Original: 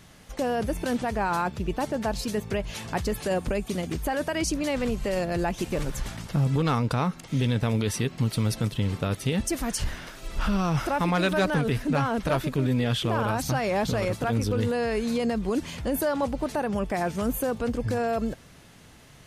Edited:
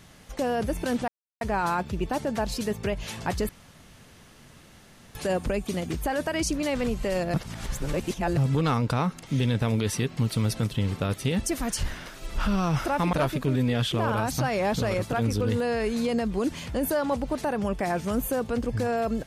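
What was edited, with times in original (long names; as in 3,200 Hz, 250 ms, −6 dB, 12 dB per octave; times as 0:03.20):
0:01.08: splice in silence 0.33 s
0:03.16: splice in room tone 1.66 s
0:05.35–0:06.38: reverse
0:11.14–0:12.24: remove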